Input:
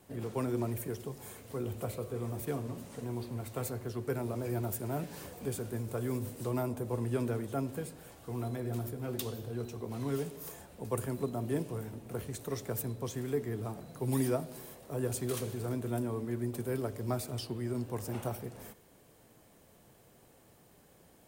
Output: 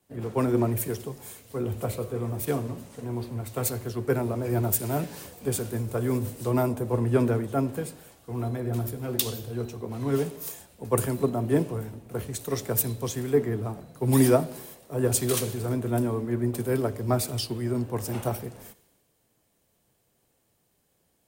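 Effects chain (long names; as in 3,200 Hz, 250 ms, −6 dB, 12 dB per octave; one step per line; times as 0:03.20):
multiband upward and downward expander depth 70%
level +8 dB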